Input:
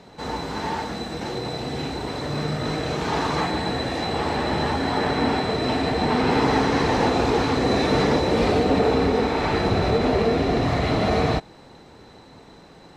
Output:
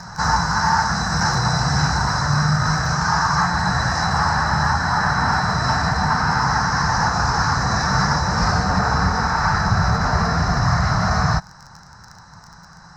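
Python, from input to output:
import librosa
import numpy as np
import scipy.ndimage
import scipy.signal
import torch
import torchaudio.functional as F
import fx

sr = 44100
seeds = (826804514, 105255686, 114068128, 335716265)

y = fx.dmg_crackle(x, sr, seeds[0], per_s=19.0, level_db=-30.0)
y = fx.curve_eq(y, sr, hz=(180.0, 260.0, 440.0, 930.0, 1600.0, 2300.0, 3400.0, 5300.0, 9700.0), db=(0, -19, -22, 1, 6, -15, -21, 11, -13))
y = fx.rider(y, sr, range_db=10, speed_s=0.5)
y = y * librosa.db_to_amplitude(7.5)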